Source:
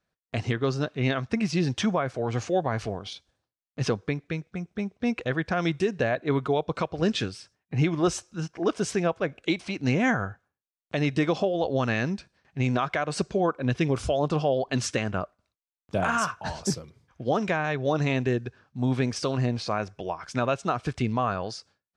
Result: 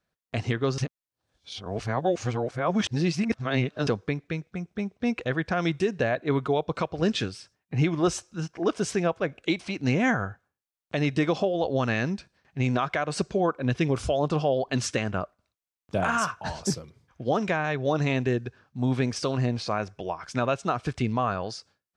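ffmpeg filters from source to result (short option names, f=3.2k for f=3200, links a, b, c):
-filter_complex "[0:a]asplit=3[a][b][c];[a]atrim=end=0.782[d];[b]atrim=start=0.778:end=3.872,asetpts=PTS-STARTPTS,areverse[e];[c]atrim=start=3.868[f];[d][e]acrossfade=d=0.004:c1=hsin:c2=hsin[g];[g][f]acrossfade=d=0.004:c1=hsin:c2=hsin"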